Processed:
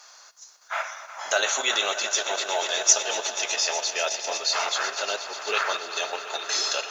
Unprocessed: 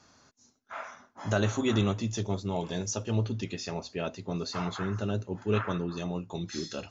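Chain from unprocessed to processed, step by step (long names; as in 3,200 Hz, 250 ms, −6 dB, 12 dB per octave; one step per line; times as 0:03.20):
high-pass filter 590 Hz 24 dB per octave
spectral tilt +2 dB per octave
on a send: echo that builds up and dies away 122 ms, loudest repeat 5, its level −15 dB
on the sum: dynamic equaliser 1,100 Hz, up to −5 dB, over −49 dBFS, Q 2.7
in parallel at +2 dB: output level in coarse steps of 14 dB
on the sum: log-companded quantiser 8 bits
level +6.5 dB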